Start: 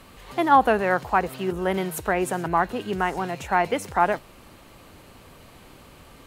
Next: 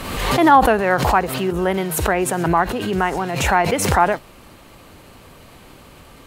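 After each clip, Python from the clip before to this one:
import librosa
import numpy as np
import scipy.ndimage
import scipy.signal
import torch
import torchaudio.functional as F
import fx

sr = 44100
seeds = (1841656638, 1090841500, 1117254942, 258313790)

y = fx.pre_swell(x, sr, db_per_s=43.0)
y = y * 10.0 ** (4.0 / 20.0)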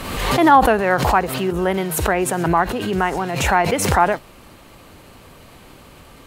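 y = x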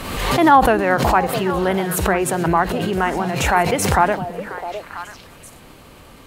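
y = fx.echo_stepped(x, sr, ms=329, hz=200.0, octaves=1.4, feedback_pct=70, wet_db=-5.0)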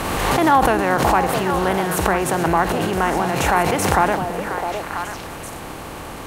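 y = fx.bin_compress(x, sr, power=0.6)
y = y * 10.0 ** (-4.5 / 20.0)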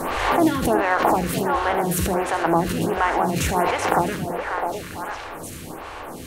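y = fx.doubler(x, sr, ms=12.0, db=-11.0)
y = y + 10.0 ** (-11.0 / 20.0) * np.pad(y, (int(76 * sr / 1000.0), 0))[:len(y)]
y = fx.stagger_phaser(y, sr, hz=1.4)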